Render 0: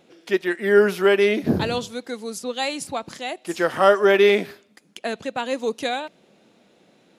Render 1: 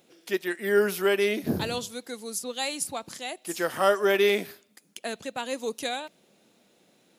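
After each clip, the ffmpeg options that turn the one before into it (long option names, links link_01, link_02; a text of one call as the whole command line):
ffmpeg -i in.wav -af "aemphasis=mode=production:type=50fm,volume=-6.5dB" out.wav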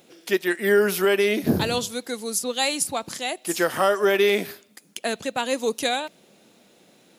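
ffmpeg -i in.wav -af "alimiter=limit=-16.5dB:level=0:latency=1:release=190,volume=7dB" out.wav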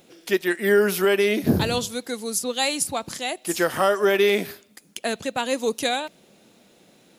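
ffmpeg -i in.wav -af "lowshelf=frequency=89:gain=9.5" out.wav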